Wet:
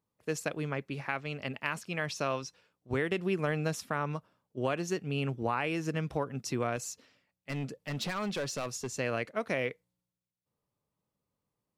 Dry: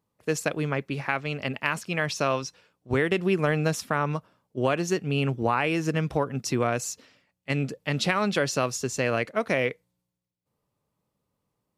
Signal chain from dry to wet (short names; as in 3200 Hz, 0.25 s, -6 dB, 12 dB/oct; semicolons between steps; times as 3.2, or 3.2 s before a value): 6.76–8.9 overloaded stage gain 23 dB; gain -7 dB